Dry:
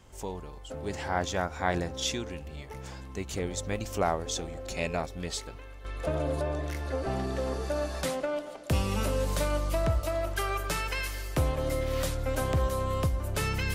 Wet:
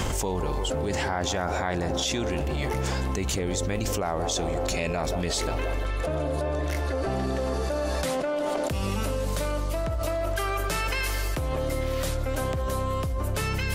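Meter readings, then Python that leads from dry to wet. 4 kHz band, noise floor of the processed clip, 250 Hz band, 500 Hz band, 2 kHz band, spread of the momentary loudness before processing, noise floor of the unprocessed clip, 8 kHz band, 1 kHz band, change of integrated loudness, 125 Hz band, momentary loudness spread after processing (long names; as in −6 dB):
+4.5 dB, −28 dBFS, +4.5 dB, +3.5 dB, +3.5 dB, 10 LU, −44 dBFS, +5.0 dB, +3.5 dB, +3.5 dB, +3.0 dB, 2 LU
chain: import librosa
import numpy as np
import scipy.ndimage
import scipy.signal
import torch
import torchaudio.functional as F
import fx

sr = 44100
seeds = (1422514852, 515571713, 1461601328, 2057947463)

p1 = x + fx.echo_wet_bandpass(x, sr, ms=176, feedback_pct=67, hz=510.0, wet_db=-12.0, dry=0)
p2 = fx.env_flatten(p1, sr, amount_pct=100)
y = p2 * 10.0 ** (-4.5 / 20.0)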